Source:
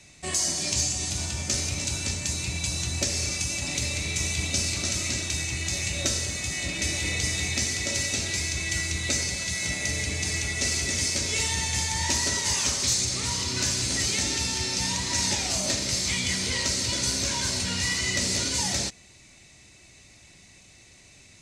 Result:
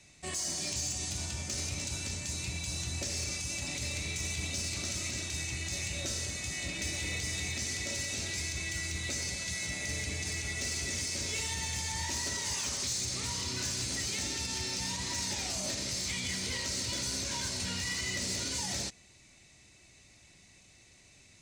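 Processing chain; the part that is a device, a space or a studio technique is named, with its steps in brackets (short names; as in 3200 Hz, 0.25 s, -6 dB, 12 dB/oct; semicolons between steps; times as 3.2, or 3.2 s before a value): limiter into clipper (limiter -18 dBFS, peak gain reduction 6.5 dB; hard clip -21.5 dBFS, distortion -24 dB); gain -6.5 dB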